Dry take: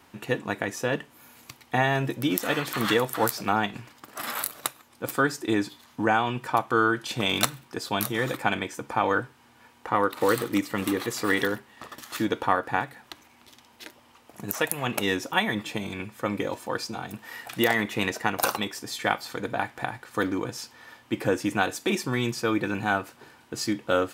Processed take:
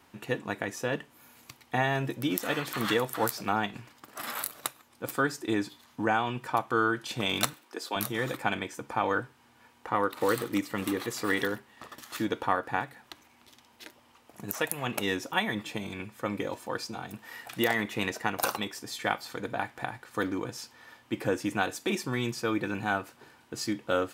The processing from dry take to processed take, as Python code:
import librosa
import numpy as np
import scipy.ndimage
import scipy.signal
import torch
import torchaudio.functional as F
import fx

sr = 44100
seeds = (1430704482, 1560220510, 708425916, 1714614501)

y = fx.highpass(x, sr, hz=280.0, slope=24, at=(7.53, 7.96))
y = F.gain(torch.from_numpy(y), -4.0).numpy()